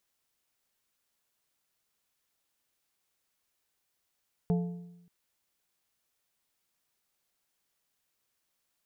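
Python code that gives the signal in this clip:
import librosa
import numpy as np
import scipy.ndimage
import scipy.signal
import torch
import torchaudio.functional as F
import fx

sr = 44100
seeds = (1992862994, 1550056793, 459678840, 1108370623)

y = fx.strike_metal(sr, length_s=0.58, level_db=-22.5, body='plate', hz=174.0, decay_s=0.94, tilt_db=8.0, modes=4)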